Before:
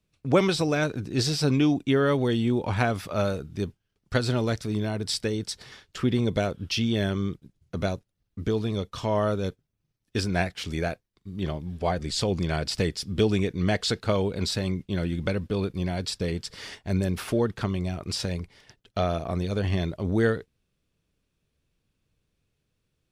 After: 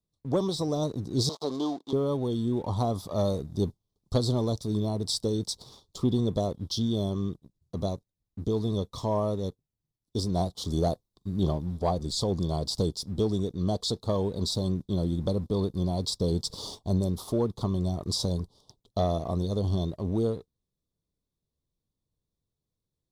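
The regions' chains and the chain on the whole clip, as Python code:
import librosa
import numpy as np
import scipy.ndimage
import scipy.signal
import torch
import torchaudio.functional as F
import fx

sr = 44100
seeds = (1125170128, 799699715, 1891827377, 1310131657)

y = fx.chain(x, sr, fx.dead_time(dead_ms=0.13),
    fx.bandpass_edges(low_hz=540.0, high_hz=5700.0),
    fx.high_shelf(hz=4300.0, db=-5.5), at=(1.29, 1.93))
y = scipy.signal.sosfilt(scipy.signal.ellip(3, 1.0, 40, [1100.0, 3600.0], 'bandstop', fs=sr, output='sos'), y)
y = fx.rider(y, sr, range_db=10, speed_s=0.5)
y = fx.leveller(y, sr, passes=1)
y = y * 10.0 ** (-4.5 / 20.0)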